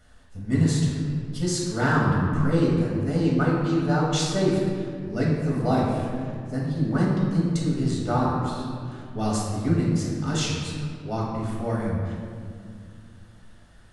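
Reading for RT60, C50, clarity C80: 2.2 s, 0.0 dB, 2.0 dB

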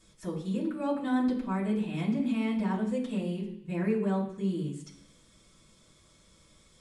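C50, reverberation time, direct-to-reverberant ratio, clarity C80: 7.5 dB, 0.65 s, −7.0 dB, 10.5 dB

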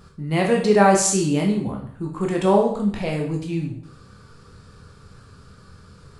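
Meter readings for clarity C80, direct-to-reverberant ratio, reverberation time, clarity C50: 9.5 dB, 0.0 dB, 0.60 s, 5.5 dB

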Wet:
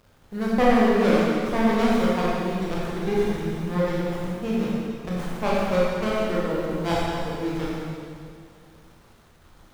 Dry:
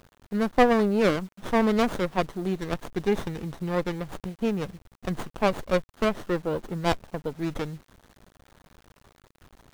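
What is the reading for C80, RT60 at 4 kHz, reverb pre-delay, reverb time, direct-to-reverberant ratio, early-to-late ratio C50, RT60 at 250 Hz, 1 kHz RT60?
−1.5 dB, 2.2 s, 16 ms, 2.3 s, −7.0 dB, −3.5 dB, 2.4 s, 2.3 s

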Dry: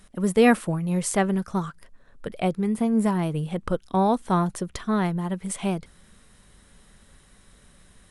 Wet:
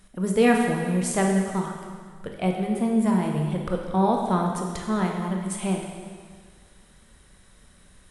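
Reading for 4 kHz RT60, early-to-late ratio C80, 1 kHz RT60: 1.7 s, 4.5 dB, 1.8 s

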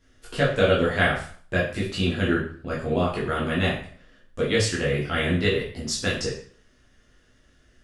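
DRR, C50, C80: −6.5 dB, 5.0 dB, 9.5 dB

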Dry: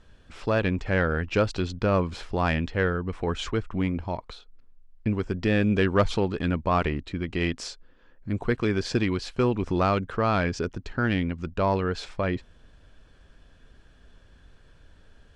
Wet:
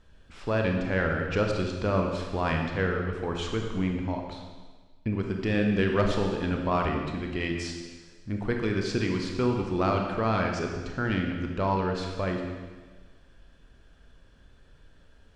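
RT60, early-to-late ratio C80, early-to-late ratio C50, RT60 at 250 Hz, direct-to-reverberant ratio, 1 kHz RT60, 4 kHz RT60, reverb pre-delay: 1.4 s, 5.0 dB, 3.5 dB, 1.4 s, 2.0 dB, 1.4 s, 1.4 s, 27 ms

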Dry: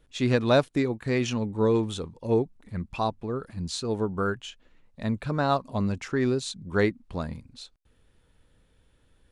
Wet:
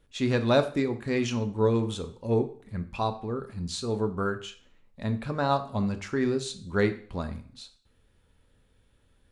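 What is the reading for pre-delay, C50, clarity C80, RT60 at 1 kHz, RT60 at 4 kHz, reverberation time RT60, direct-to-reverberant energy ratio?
3 ms, 13.5 dB, 17.5 dB, 0.50 s, 0.45 s, 0.50 s, 7.5 dB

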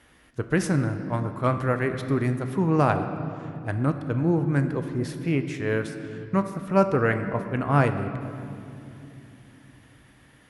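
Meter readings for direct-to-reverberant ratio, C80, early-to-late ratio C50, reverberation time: 7.0 dB, 10.0 dB, 9.0 dB, 2.9 s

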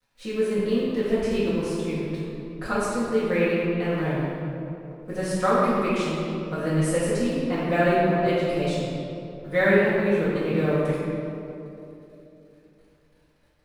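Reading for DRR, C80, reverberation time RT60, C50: −12.5 dB, −1.0 dB, 2.9 s, −3.0 dB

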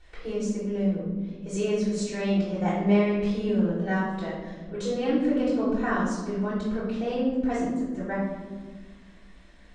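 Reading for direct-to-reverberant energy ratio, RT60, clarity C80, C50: −10.0 dB, 1.4 s, 3.5 dB, 0.5 dB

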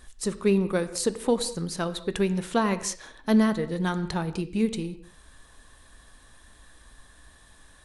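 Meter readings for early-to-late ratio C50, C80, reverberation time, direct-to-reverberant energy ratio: 14.0 dB, 15.5 dB, non-exponential decay, 11.5 dB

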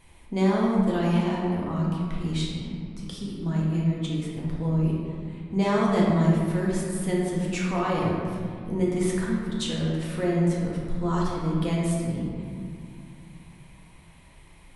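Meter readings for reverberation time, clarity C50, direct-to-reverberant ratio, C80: 2.1 s, −1.0 dB, −4.5 dB, 1.5 dB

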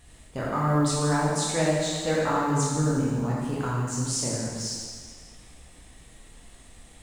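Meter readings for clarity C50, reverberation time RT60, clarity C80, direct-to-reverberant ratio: −2.0 dB, 1.7 s, 0.0 dB, −6.0 dB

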